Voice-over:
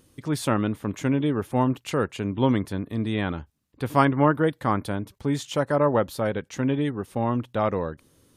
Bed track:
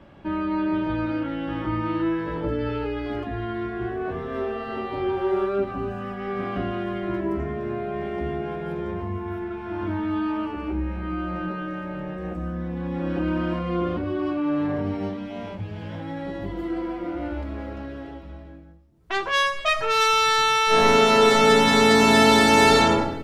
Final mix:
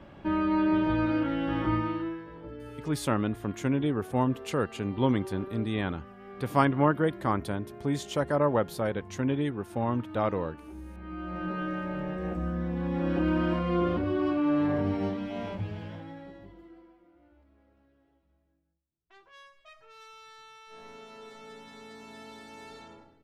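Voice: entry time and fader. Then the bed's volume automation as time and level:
2.60 s, -4.0 dB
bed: 1.74 s -0.5 dB
2.29 s -16.5 dB
10.82 s -16.5 dB
11.61 s -1.5 dB
15.66 s -1.5 dB
17.09 s -31.5 dB

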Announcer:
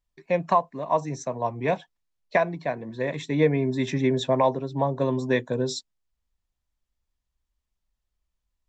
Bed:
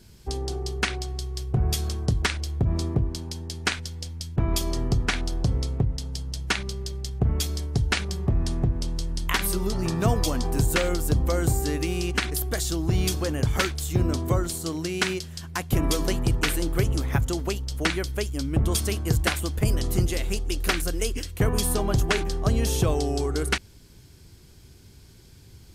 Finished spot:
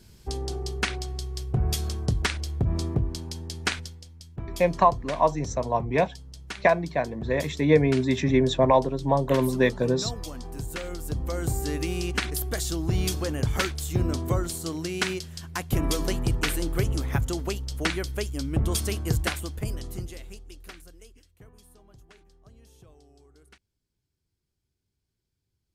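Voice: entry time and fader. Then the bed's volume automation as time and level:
4.30 s, +2.0 dB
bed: 3.80 s -1.5 dB
4.04 s -12 dB
10.68 s -12 dB
11.77 s -2 dB
19.14 s -2 dB
21.62 s -31 dB

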